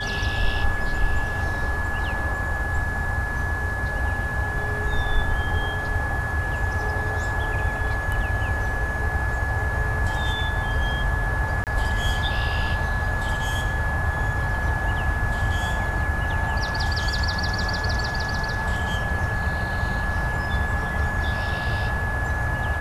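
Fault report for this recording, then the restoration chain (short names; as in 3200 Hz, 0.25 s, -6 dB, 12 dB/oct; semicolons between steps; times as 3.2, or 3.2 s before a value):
tone 1700 Hz -28 dBFS
11.64–11.67 gap 28 ms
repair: notch 1700 Hz, Q 30; interpolate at 11.64, 28 ms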